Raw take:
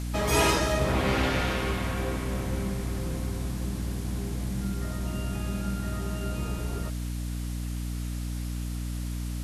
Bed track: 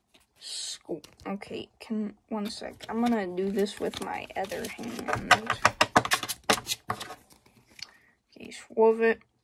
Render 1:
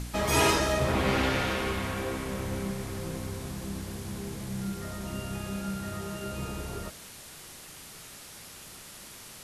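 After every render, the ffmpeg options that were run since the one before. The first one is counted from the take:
-af "bandreject=f=60:t=h:w=4,bandreject=f=120:t=h:w=4,bandreject=f=180:t=h:w=4,bandreject=f=240:t=h:w=4,bandreject=f=300:t=h:w=4,bandreject=f=360:t=h:w=4,bandreject=f=420:t=h:w=4,bandreject=f=480:t=h:w=4,bandreject=f=540:t=h:w=4,bandreject=f=600:t=h:w=4,bandreject=f=660:t=h:w=4,bandreject=f=720:t=h:w=4"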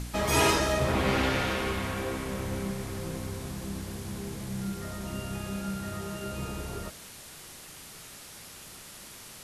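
-af anull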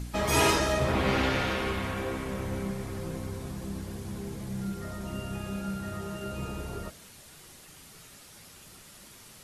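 -af "afftdn=nr=6:nf=-47"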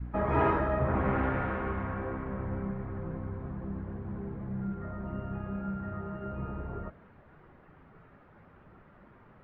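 -af "lowpass=f=1.6k:w=0.5412,lowpass=f=1.6k:w=1.3066,adynamicequalizer=threshold=0.00794:dfrequency=440:dqfactor=0.81:tfrequency=440:tqfactor=0.81:attack=5:release=100:ratio=0.375:range=2:mode=cutabove:tftype=bell"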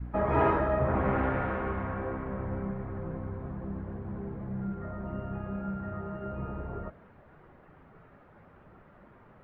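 -af "equalizer=f=610:w=1.3:g=3"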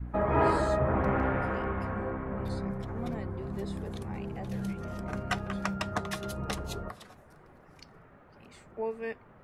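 -filter_complex "[1:a]volume=-13dB[a];[0:a][a]amix=inputs=2:normalize=0"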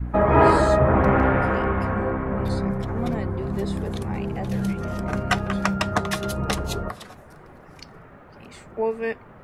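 -af "volume=9.5dB"

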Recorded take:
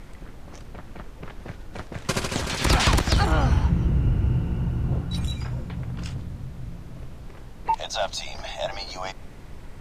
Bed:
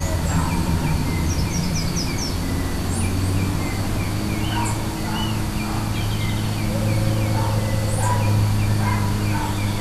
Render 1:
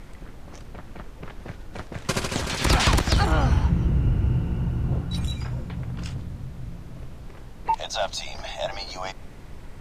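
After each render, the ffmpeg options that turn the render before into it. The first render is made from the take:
-af anull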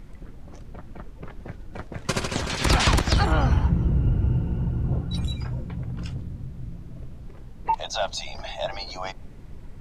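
-af "afftdn=nr=8:nf=-42"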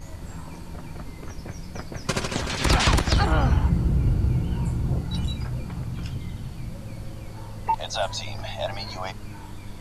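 -filter_complex "[1:a]volume=-19dB[a];[0:a][a]amix=inputs=2:normalize=0"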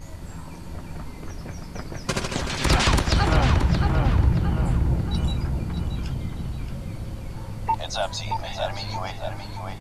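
-filter_complex "[0:a]asplit=2[a][b];[b]adelay=625,lowpass=f=2.7k:p=1,volume=-4dB,asplit=2[c][d];[d]adelay=625,lowpass=f=2.7k:p=1,volume=0.5,asplit=2[e][f];[f]adelay=625,lowpass=f=2.7k:p=1,volume=0.5,asplit=2[g][h];[h]adelay=625,lowpass=f=2.7k:p=1,volume=0.5,asplit=2[i][j];[j]adelay=625,lowpass=f=2.7k:p=1,volume=0.5,asplit=2[k][l];[l]adelay=625,lowpass=f=2.7k:p=1,volume=0.5[m];[a][c][e][g][i][k][m]amix=inputs=7:normalize=0"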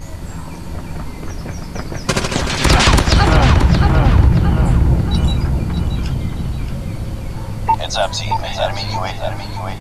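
-af "volume=9dB,alimiter=limit=-1dB:level=0:latency=1"

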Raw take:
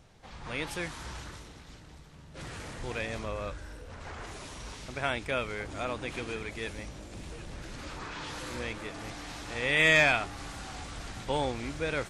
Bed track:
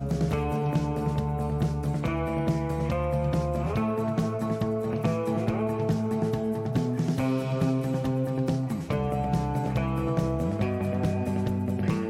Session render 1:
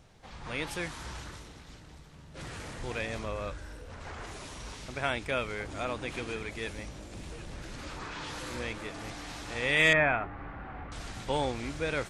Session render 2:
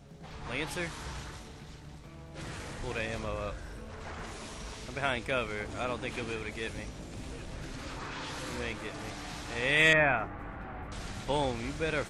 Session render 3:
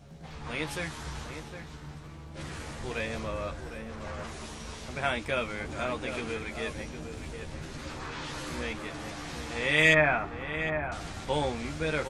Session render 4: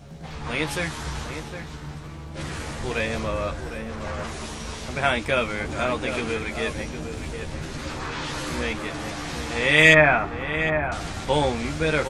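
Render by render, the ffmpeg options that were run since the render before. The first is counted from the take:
-filter_complex "[0:a]asettb=1/sr,asplit=3[a][b][c];[a]atrim=end=9.934[d];[b]atrim=start=9.93:end=10.92,asetpts=PTS-STARTPTS,afade=t=in:d=0.004:c=qsin,afade=t=out:st=0.986:d=0.004:c=qsin,lowpass=f=2k:w=0.5412,lowpass=f=2k:w=1.3066[e];[c]atrim=start=10.916[f];[d][e]acrossfade=d=0.004:c1=hsin:c2=qsin[g];[g][f]acrossfade=d=0.004:c1=qsin:c2=hsin"
-filter_complex "[1:a]volume=-24dB[a];[0:a][a]amix=inputs=2:normalize=0"
-filter_complex "[0:a]asplit=2[a][b];[b]adelay=13,volume=-5dB[c];[a][c]amix=inputs=2:normalize=0,asplit=2[d][e];[e]adelay=758,volume=-8dB,highshelf=f=4k:g=-17.1[f];[d][f]amix=inputs=2:normalize=0"
-af "volume=7.5dB"

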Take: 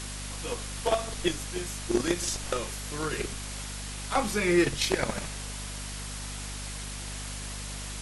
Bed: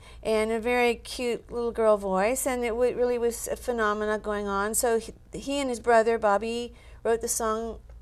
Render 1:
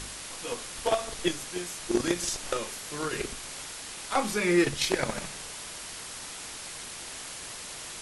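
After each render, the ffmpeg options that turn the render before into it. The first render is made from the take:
-af "bandreject=f=50:t=h:w=4,bandreject=f=100:t=h:w=4,bandreject=f=150:t=h:w=4,bandreject=f=200:t=h:w=4,bandreject=f=250:t=h:w=4"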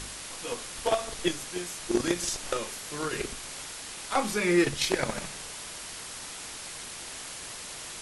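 -af anull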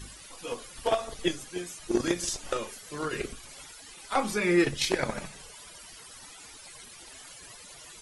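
-af "afftdn=nr=15:nf=-41"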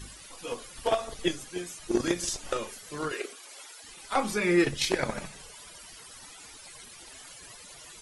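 -filter_complex "[0:a]asettb=1/sr,asplit=3[a][b][c];[a]atrim=end=3.124[d];[b]atrim=start=3.12:end=3.84,asetpts=PTS-STARTPTS,afade=t=in:d=0.004:c=qsin,afade=t=out:st=0.716:d=0.004:c=qsin,highpass=f=350:w=0.5412,highpass=f=350:w=1.3066[e];[c]atrim=start=3.836[f];[d][e]acrossfade=d=0.004:c1=hsin:c2=qsin[g];[g][f]acrossfade=d=0.004:c1=qsin:c2=hsin"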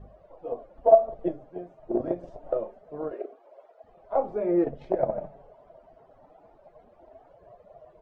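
-af "lowpass=f=650:t=q:w=6.5,flanger=delay=1.6:depth=6.1:regen=-45:speed=0.26:shape=sinusoidal"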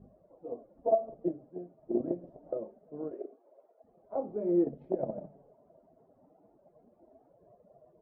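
-af "bandpass=f=240:t=q:w=1.3:csg=0"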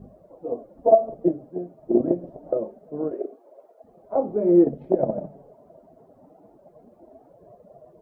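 -af "volume=11dB"

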